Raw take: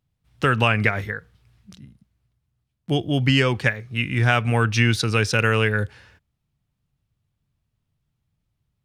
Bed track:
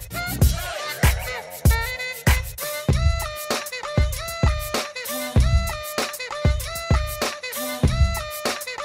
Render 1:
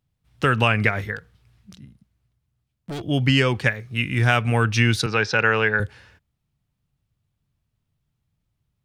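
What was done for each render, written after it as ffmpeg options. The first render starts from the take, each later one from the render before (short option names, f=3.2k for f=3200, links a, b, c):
-filter_complex "[0:a]asettb=1/sr,asplit=3[a][b][c];[a]atrim=end=1.164[d];[b]atrim=start=1.16:end=3.03,asetpts=PTS-STARTPTS,afade=t=in:d=0.004:c=qsin,afade=t=out:st=1.866:d=0.004:c=qsin,volume=28.5dB,asoftclip=hard,volume=-28.5dB[e];[c]atrim=start=3.026[f];[d][e]acrossfade=d=0.004:c1=hsin:c2=qsin[g];[g][f]acrossfade=d=0.004:c1=qsin:c2=hsin,asettb=1/sr,asplit=3[h][i][j];[h]atrim=end=3.724[k];[i]atrim=start=3.72:end=4.37,asetpts=PTS-STARTPTS,afade=t=in:d=0.004:c=qsin,afade=t=out:st=0.646:d=0.004:c=qsin,highshelf=f=7.6k:g=5[l];[j]atrim=start=4.366[m];[k][l]acrossfade=d=0.004:c1=hsin:c2=qsin[n];[n][m]acrossfade=d=0.004:c1=qsin:c2=hsin,asettb=1/sr,asplit=3[o][p][q];[o]atrim=end=5.064[r];[p]atrim=start=5.06:end=5.8,asetpts=PTS-STARTPTS,afade=t=in:d=0.004:c=qsin,afade=t=out:st=0.736:d=0.004:c=qsin,highpass=160,equalizer=f=260:t=q:w=4:g=-7,equalizer=f=840:t=q:w=4:g=7,equalizer=f=1.6k:t=q:w=4:g=5,equalizer=f=3k:t=q:w=4:g=-4,lowpass=f=5.4k:w=0.5412,lowpass=f=5.4k:w=1.3066[s];[q]atrim=start=5.796[t];[r][s]acrossfade=d=0.004:c1=hsin:c2=qsin[u];[u][t]acrossfade=d=0.004:c1=qsin:c2=hsin"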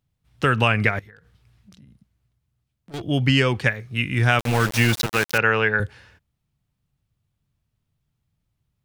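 -filter_complex "[0:a]asettb=1/sr,asplit=3[a][b][c];[a]atrim=end=0.994[d];[b]atrim=start=0.99:end=2.94,asetpts=PTS-STARTPTS,afade=t=in:d=0.004:c=qsin,afade=t=out:st=1.946:d=0.004:c=qsin,acompressor=threshold=-45dB:ratio=6:attack=3.2:release=140:knee=1:detection=peak[e];[c]atrim=start=2.936[f];[d][e]acrossfade=d=0.004:c1=hsin:c2=qsin[g];[g][f]acrossfade=d=0.004:c1=qsin:c2=hsin,asettb=1/sr,asplit=3[h][i][j];[h]atrim=end=4.394[k];[i]atrim=start=4.39:end=5.38,asetpts=PTS-STARTPTS,afade=t=in:d=0.004:c=qsin,afade=t=out:st=0.986:d=0.004:c=qsin,aeval=exprs='val(0)*gte(abs(val(0)),0.0891)':c=same[l];[j]atrim=start=5.376[m];[k][l]acrossfade=d=0.004:c1=hsin:c2=qsin[n];[n][m]acrossfade=d=0.004:c1=qsin:c2=hsin"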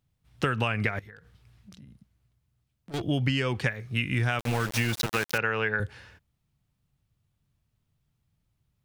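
-af "acompressor=threshold=-23dB:ratio=6"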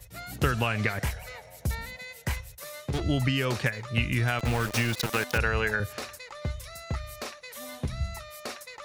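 -filter_complex "[1:a]volume=-13dB[a];[0:a][a]amix=inputs=2:normalize=0"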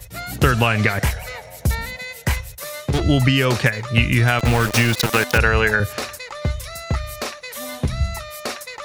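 -af "volume=10dB,alimiter=limit=-1dB:level=0:latency=1"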